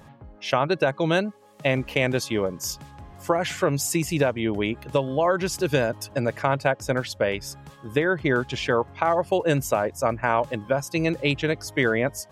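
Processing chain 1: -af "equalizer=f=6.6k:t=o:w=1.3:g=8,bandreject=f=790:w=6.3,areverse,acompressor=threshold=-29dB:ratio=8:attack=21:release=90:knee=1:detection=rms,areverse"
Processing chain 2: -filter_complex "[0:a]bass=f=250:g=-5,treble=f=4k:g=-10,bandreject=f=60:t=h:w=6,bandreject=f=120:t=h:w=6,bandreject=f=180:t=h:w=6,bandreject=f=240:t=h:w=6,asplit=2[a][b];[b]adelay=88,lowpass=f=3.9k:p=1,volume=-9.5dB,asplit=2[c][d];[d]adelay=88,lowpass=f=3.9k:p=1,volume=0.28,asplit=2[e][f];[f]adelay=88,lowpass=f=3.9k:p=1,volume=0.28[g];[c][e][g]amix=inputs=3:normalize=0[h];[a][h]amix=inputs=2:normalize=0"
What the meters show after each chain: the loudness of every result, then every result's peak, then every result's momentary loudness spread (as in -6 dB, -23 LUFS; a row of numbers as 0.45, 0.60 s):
-31.5, -25.0 LUFS; -17.0, -7.0 dBFS; 4, 6 LU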